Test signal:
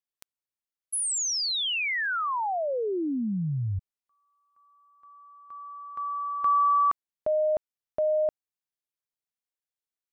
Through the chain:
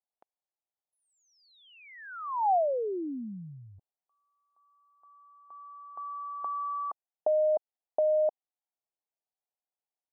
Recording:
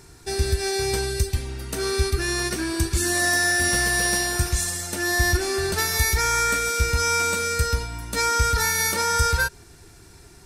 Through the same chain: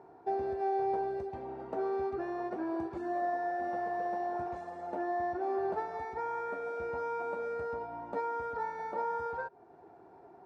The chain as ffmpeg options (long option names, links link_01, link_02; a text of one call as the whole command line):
ffmpeg -i in.wav -af "highpass=300,acompressor=threshold=-28dB:ratio=3:attack=13:release=756:knee=6:detection=peak,lowpass=frequency=770:width_type=q:width=3.5,volume=-3.5dB" out.wav